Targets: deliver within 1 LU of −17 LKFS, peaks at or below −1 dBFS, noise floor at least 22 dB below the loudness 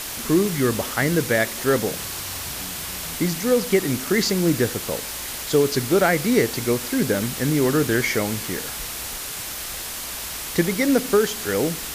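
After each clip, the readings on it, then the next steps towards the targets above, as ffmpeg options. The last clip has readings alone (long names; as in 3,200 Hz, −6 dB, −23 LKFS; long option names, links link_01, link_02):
background noise floor −32 dBFS; target noise floor −44 dBFS; integrated loudness −22.0 LKFS; sample peak −6.5 dBFS; target loudness −17.0 LKFS
→ -af "afftdn=noise_reduction=12:noise_floor=-32"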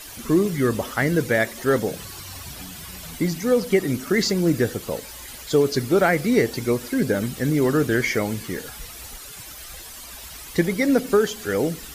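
background noise floor −39 dBFS; target noise floor −44 dBFS
→ -af "afftdn=noise_reduction=6:noise_floor=-39"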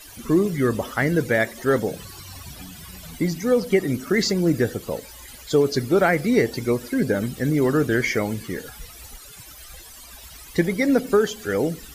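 background noise floor −43 dBFS; target noise floor −44 dBFS
→ -af "afftdn=noise_reduction=6:noise_floor=-43"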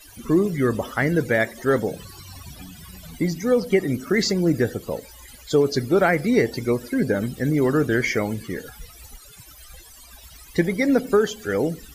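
background noise floor −46 dBFS; integrated loudness −22.0 LKFS; sample peak −6.5 dBFS; target loudness −17.0 LKFS
→ -af "volume=5dB"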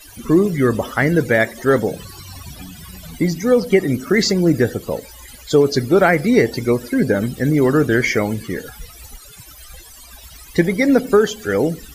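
integrated loudness −17.0 LKFS; sample peak −1.5 dBFS; background noise floor −41 dBFS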